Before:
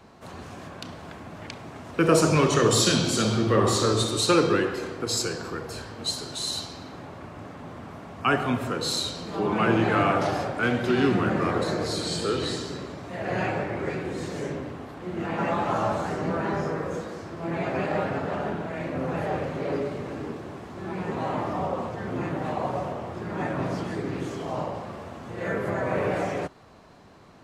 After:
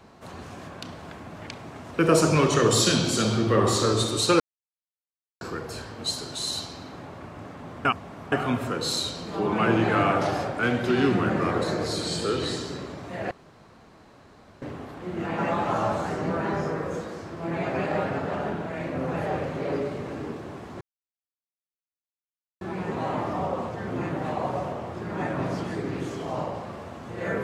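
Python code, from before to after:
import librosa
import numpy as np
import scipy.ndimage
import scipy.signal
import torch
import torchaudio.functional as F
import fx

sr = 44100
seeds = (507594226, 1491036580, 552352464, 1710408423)

y = fx.edit(x, sr, fx.silence(start_s=4.4, length_s=1.01),
    fx.reverse_span(start_s=7.85, length_s=0.47),
    fx.room_tone_fill(start_s=13.31, length_s=1.31),
    fx.insert_silence(at_s=20.81, length_s=1.8), tone=tone)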